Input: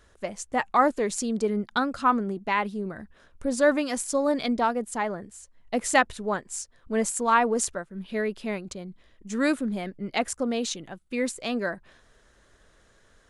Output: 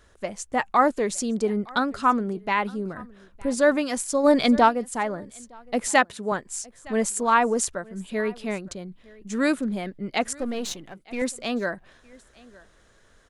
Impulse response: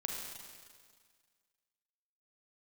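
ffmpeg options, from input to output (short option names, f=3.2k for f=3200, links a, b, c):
-filter_complex "[0:a]asettb=1/sr,asplit=3[a][b][c];[a]atrim=end=10.364[d];[b]atrim=start=10.36:end=11.22,asetpts=PTS-STARTPTS,afade=t=in:d=0.004:c=qsin,afade=t=out:st=0.856:d=0.004:c=qsin,aeval=exprs='if(lt(val(0),0),0.447*val(0),val(0))':c=same[e];[c]atrim=start=11.216[f];[d][e]acrossfade=d=0.004:c1=hsin:c2=qsin[g];[g][f]acrossfade=d=0.004:c1=qsin:c2=hsin,aecho=1:1:913:0.0668,asplit=3[h][i][j];[h]afade=t=out:st=4.23:d=0.02[k];[i]acontrast=48,afade=t=in:st=4.23:d=0.02,afade=t=out:st=4.68:d=0.02[l];[j]afade=t=in:st=4.68:d=0.02[m];[k][l][m]amix=inputs=3:normalize=0,asettb=1/sr,asplit=3[n][o][p];[n]atrim=end=5.884[q];[o]atrim=start=5.88:end=6.32,asetpts=PTS-STARTPTS,afade=t=in:d=0.004:c=qsin,afade=t=out:st=0.436:d=0.004:c=qsin,highpass=130[r];[p]atrim=start=6.316[s];[q][r]acrossfade=d=0.004:c1=hsin:c2=qsin[t];[t][s]acrossfade=d=0.004:c1=qsin:c2=hsin,volume=1.5dB"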